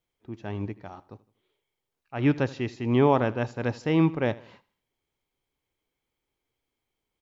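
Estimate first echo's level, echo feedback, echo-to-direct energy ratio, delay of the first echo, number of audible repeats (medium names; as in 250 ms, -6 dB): -20.0 dB, 43%, -19.0 dB, 80 ms, 3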